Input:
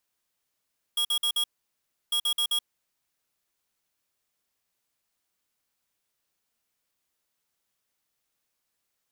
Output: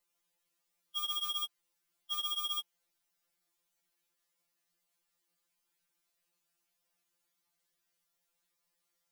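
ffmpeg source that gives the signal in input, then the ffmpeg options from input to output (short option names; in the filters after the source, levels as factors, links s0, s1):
-f lavfi -i "aevalsrc='0.0531*(2*lt(mod(3300*t,1),0.5)-1)*clip(min(mod(mod(t,1.15),0.13),0.08-mod(mod(t,1.15),0.13))/0.005,0,1)*lt(mod(t,1.15),0.52)':d=2.3:s=44100"
-af "afftfilt=real='re*2.83*eq(mod(b,8),0)':imag='im*2.83*eq(mod(b,8),0)':win_size=2048:overlap=0.75"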